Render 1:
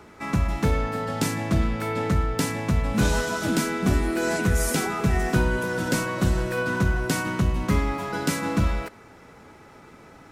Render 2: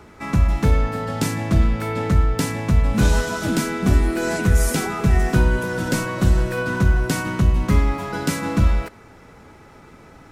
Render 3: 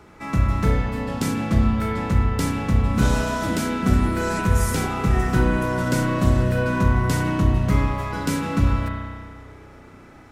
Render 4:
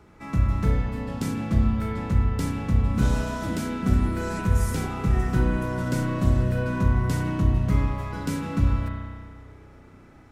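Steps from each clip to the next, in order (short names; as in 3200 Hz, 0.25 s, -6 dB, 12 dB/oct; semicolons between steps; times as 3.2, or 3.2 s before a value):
low shelf 97 Hz +8.5 dB; gain +1.5 dB
spring tank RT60 1.8 s, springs 32 ms, chirp 65 ms, DRR 0.5 dB; gain -3.5 dB
low shelf 270 Hz +6 dB; gain -7.5 dB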